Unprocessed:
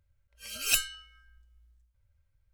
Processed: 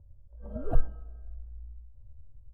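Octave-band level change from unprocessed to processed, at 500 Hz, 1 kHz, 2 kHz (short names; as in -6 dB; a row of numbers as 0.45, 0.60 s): +12.5, +3.0, -23.5 dB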